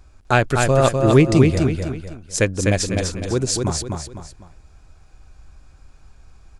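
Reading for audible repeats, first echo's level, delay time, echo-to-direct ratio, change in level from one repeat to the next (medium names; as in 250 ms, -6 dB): 3, -4.0 dB, 251 ms, -3.5 dB, -8.5 dB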